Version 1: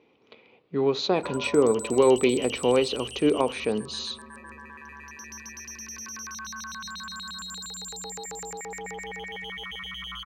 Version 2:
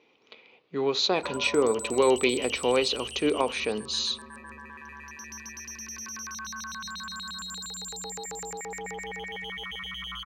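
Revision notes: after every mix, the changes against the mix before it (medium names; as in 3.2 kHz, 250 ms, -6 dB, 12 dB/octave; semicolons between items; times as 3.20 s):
speech: add tilt EQ +2.5 dB/octave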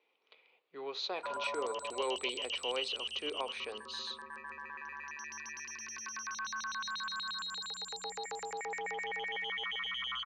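speech -11.0 dB; master: add three-band isolator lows -18 dB, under 400 Hz, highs -23 dB, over 5.6 kHz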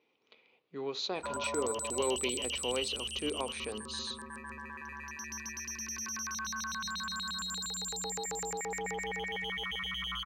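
master: remove three-band isolator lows -18 dB, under 400 Hz, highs -23 dB, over 5.6 kHz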